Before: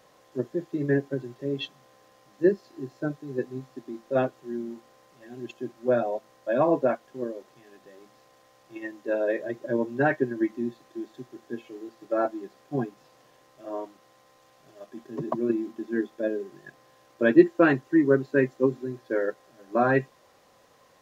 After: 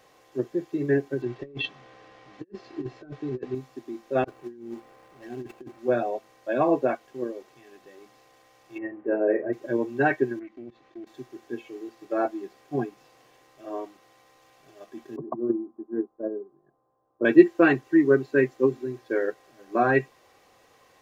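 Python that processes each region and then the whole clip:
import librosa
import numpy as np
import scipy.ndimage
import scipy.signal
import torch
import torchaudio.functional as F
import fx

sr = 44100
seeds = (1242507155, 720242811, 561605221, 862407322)

y = fx.chain(x, sr, fx.lowpass(hz=3700.0, slope=12),
    fx.over_compress(threshold_db=-36.0, ratio=-0.5),
    fx.doubler(ms=16.0, db=-13.5), at=(1.22, 3.55))
y = fx.chain(y, sr, fx.median_filter(points=15),
    fx.over_compress(threshold_db=-38.0, ratio=-0.5), at=(4.24, 5.79))
y = fx.chain(y, sr, fx.lowpass(hz=2000.0, slope=24),
    fx.tilt_shelf(db=5.0, hz=930.0),
    fx.doubler(ms=38.0, db=-9.0), at=(8.78, 9.53))
y = fx.chain(y, sr, fx.lowpass(hz=3800.0, slope=12),
    fx.level_steps(step_db=20),
    fx.doppler_dist(depth_ms=0.28), at=(10.39, 11.07))
y = fx.chain(y, sr, fx.steep_lowpass(hz=1200.0, slope=36),
    fx.upward_expand(threshold_db=-46.0, expansion=1.5), at=(15.16, 17.25))
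y = fx.peak_eq(y, sr, hz=2400.0, db=12.5, octaves=0.25)
y = fx.notch(y, sr, hz=2400.0, q=8.9)
y = y + 0.33 * np.pad(y, (int(2.6 * sr / 1000.0), 0))[:len(y)]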